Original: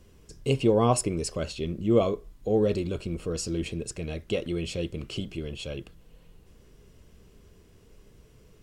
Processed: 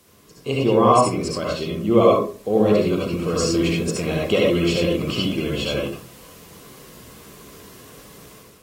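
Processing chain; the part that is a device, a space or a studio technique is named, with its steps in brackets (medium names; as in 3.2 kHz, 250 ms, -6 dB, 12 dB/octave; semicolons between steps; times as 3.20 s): filmed off a television (band-pass 150–6800 Hz; peaking EQ 1.1 kHz +8 dB 0.54 oct; reverberation RT60 0.35 s, pre-delay 60 ms, DRR -2.5 dB; white noise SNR 31 dB; level rider gain up to 9.5 dB; trim -1 dB; AAC 48 kbps 44.1 kHz)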